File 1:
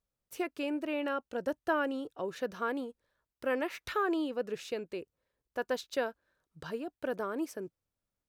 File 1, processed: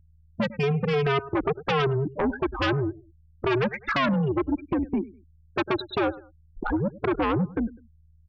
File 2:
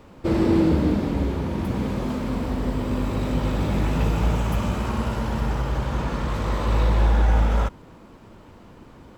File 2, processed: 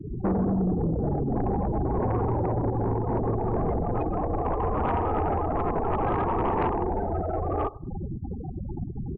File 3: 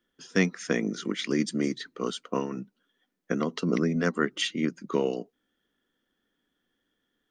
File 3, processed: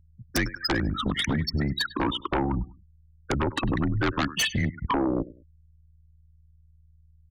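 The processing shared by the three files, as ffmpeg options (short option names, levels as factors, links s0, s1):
-filter_complex "[0:a]acompressor=threshold=0.0316:ratio=12,highpass=140,lowpass=6500,highshelf=f=3800:g=-12,acrossover=split=450[s0][s1];[s0]acompressor=threshold=0.00501:ratio=4[s2];[s2][s1]amix=inputs=2:normalize=0,afftfilt=real='re*gte(hypot(re,im),0.0141)':imag='im*gte(hypot(re,im),0.0141)':win_size=1024:overlap=0.75,aeval=exprs='val(0)+0.000178*(sin(2*PI*60*n/s)+sin(2*PI*2*60*n/s)/2+sin(2*PI*3*60*n/s)/3+sin(2*PI*4*60*n/s)/4+sin(2*PI*5*60*n/s)/5)':c=same,asplit=2[s3][s4];[s4]aecho=0:1:101|202:0.0891|0.025[s5];[s3][s5]amix=inputs=2:normalize=0,aexciter=amount=11.4:drive=6:freq=5000,afreqshift=-140,aeval=exprs='0.0668*sin(PI/2*3.55*val(0)/0.0668)':c=same,volume=1.58"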